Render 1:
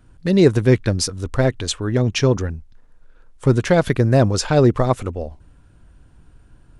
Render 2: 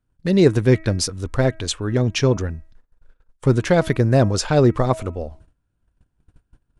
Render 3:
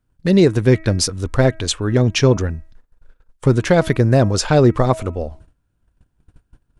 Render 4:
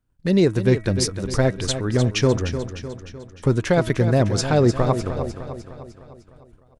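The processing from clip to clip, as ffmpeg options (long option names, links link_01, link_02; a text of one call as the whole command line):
ffmpeg -i in.wav -af "bandreject=frequency=320.5:width_type=h:width=4,bandreject=frequency=641:width_type=h:width=4,bandreject=frequency=961.5:width_type=h:width=4,bandreject=frequency=1282:width_type=h:width=4,bandreject=frequency=1602.5:width_type=h:width=4,bandreject=frequency=1923:width_type=h:width=4,bandreject=frequency=2243.5:width_type=h:width=4,bandreject=frequency=2564:width_type=h:width=4,agate=range=-21dB:threshold=-43dB:ratio=16:detection=peak,volume=-1dB" out.wav
ffmpeg -i in.wav -af "alimiter=limit=-7dB:level=0:latency=1:release=296,volume=4dB" out.wav
ffmpeg -i in.wav -af "aecho=1:1:303|606|909|1212|1515|1818:0.316|0.168|0.0888|0.0471|0.025|0.0132,volume=-4.5dB" out.wav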